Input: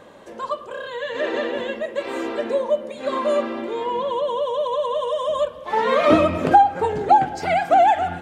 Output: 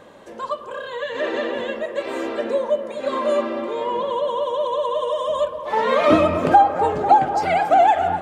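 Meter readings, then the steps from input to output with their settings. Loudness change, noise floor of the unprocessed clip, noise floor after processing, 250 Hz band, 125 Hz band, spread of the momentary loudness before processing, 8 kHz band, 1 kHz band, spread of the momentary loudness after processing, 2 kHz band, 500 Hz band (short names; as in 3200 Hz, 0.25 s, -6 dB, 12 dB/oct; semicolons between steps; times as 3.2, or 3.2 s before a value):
+0.5 dB, -40 dBFS, -37 dBFS, 0.0 dB, 0.0 dB, 12 LU, n/a, +0.5 dB, 12 LU, 0.0 dB, +0.5 dB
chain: band-limited delay 0.248 s, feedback 77%, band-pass 720 Hz, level -11 dB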